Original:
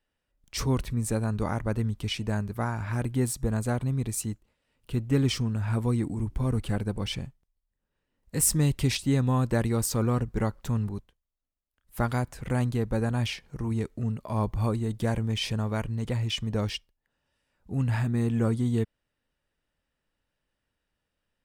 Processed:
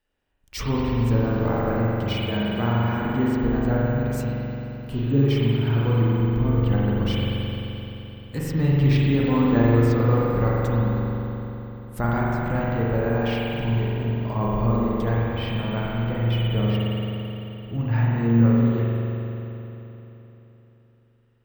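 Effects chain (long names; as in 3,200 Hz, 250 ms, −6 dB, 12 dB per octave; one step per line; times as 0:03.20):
treble cut that deepens with the level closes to 3,000 Hz, closed at −24 dBFS
0:04.94–0:05.16: healed spectral selection 810–6,400 Hz
0:15.20–0:17.75: high-frequency loss of the air 230 metres
spring reverb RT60 3.6 s, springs 43 ms, chirp 70 ms, DRR −6 dB
bad sample-rate conversion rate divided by 2×, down none, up hold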